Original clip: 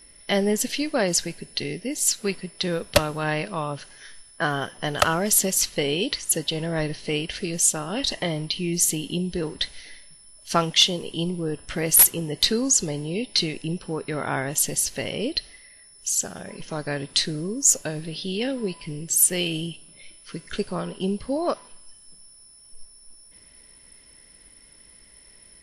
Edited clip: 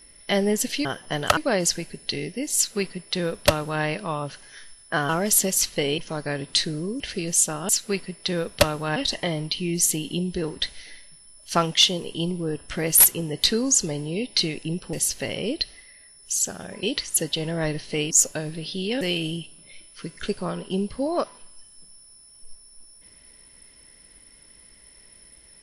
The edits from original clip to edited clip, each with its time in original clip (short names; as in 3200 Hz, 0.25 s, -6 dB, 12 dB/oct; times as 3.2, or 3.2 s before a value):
2.04–3.31 copy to 7.95
4.57–5.09 move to 0.85
5.98–7.26 swap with 16.59–17.61
13.92–14.69 cut
18.51–19.31 cut